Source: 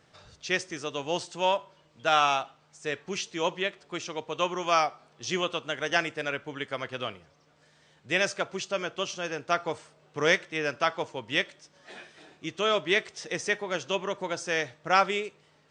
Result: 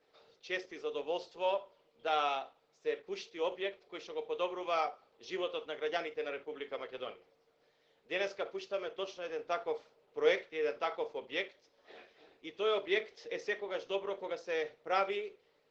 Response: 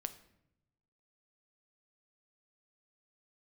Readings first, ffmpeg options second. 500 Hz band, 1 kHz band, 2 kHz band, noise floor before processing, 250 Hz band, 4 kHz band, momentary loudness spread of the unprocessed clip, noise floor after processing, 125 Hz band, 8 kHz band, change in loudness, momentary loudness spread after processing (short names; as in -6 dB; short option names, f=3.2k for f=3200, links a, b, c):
-4.0 dB, -9.0 dB, -11.0 dB, -63 dBFS, -10.0 dB, -11.0 dB, 13 LU, -72 dBFS, under -20 dB, under -15 dB, -8.0 dB, 11 LU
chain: -filter_complex "[0:a]highpass=360,equalizer=f=440:t=q:w=4:g=9,equalizer=f=1.1k:t=q:w=4:g=-4,equalizer=f=1.6k:t=q:w=4:g=-7,equalizer=f=2.9k:t=q:w=4:g=-4,lowpass=f=4.6k:w=0.5412,lowpass=f=4.6k:w=1.3066[a];[1:a]atrim=start_sample=2205,atrim=end_sample=6615,asetrate=79380,aresample=44100[b];[a][b]afir=irnorm=-1:irlink=0" -ar 48000 -c:a libopus -b:a 12k